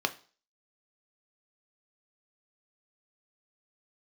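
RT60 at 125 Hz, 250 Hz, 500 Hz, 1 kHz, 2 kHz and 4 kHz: 0.35, 0.40, 0.40, 0.40, 0.40, 0.45 s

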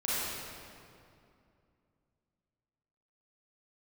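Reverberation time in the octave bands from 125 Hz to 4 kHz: 3.2, 3.2, 2.6, 2.4, 2.0, 1.7 s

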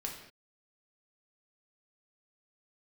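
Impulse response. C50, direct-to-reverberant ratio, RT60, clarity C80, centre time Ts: 5.5 dB, -0.5 dB, not exponential, 8.0 dB, 32 ms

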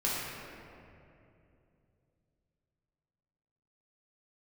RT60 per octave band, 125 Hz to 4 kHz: 4.0, 3.3, 3.0, 2.4, 2.2, 1.5 s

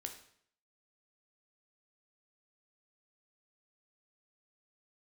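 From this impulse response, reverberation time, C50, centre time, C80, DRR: 0.65 s, 9.0 dB, 16 ms, 12.0 dB, 4.0 dB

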